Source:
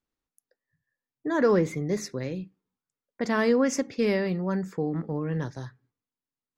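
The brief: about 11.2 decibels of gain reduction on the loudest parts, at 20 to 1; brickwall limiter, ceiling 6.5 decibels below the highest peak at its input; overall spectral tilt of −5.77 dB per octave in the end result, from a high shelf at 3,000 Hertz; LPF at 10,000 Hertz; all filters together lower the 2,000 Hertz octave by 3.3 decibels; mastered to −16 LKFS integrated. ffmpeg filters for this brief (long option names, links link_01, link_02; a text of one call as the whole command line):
ffmpeg -i in.wav -af "lowpass=10000,equalizer=frequency=2000:width_type=o:gain=-5.5,highshelf=frequency=3000:gain=4.5,acompressor=threshold=-28dB:ratio=20,volume=19.5dB,alimiter=limit=-6.5dB:level=0:latency=1" out.wav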